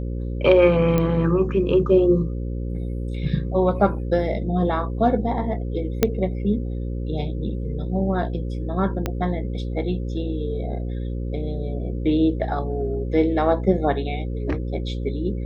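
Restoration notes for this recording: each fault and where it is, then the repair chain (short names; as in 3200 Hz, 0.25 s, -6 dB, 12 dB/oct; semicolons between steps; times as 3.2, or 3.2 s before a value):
buzz 60 Hz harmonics 9 -27 dBFS
0.98 pop -9 dBFS
6.03 pop -3 dBFS
9.06 pop -10 dBFS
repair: de-click; de-hum 60 Hz, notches 9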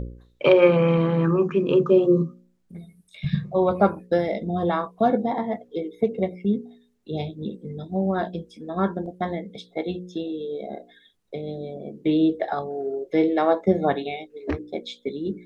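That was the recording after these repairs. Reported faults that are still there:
9.06 pop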